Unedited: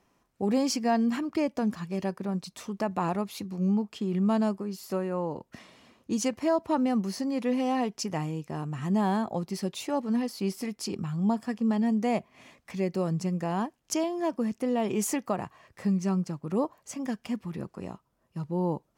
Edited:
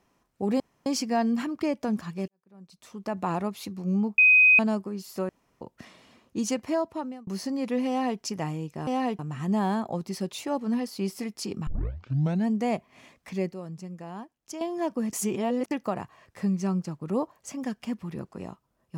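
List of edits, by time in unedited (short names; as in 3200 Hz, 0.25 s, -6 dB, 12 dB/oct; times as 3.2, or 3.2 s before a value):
0.6 insert room tone 0.26 s
2.02–2.94 fade in quadratic
3.92–4.33 bleep 2510 Hz -13.5 dBFS
5.03–5.35 room tone
6.42–7.01 fade out linear
7.62–7.94 copy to 8.61
11.09 tape start 0.80 s
12.94–14.03 gain -10 dB
14.55–15.13 reverse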